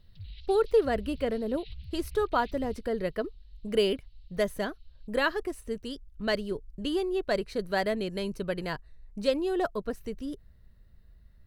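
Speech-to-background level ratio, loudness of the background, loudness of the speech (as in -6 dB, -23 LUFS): 17.0 dB, -48.0 LUFS, -31.0 LUFS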